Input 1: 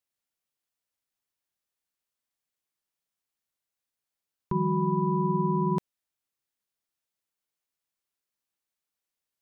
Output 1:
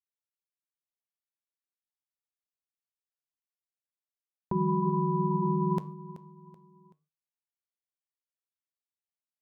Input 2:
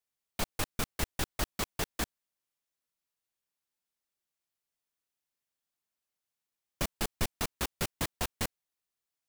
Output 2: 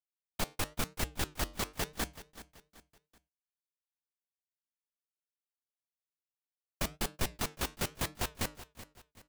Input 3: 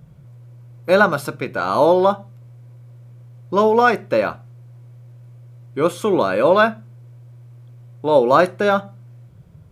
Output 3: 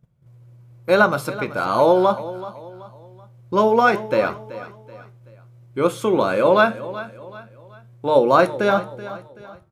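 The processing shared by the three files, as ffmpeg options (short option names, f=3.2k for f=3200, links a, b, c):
-filter_complex "[0:a]bandreject=f=151.1:t=h:w=4,bandreject=f=302.2:t=h:w=4,bandreject=f=453.3:t=h:w=4,bandreject=f=604.4:t=h:w=4,flanger=delay=7.7:depth=3:regen=-83:speed=0.98:shape=sinusoidal,agate=range=-17dB:threshold=-46dB:ratio=16:detection=peak,asplit=2[a][b];[b]aecho=0:1:380|760|1140:0.168|0.0655|0.0255[c];[a][c]amix=inputs=2:normalize=0,volume=3.5dB"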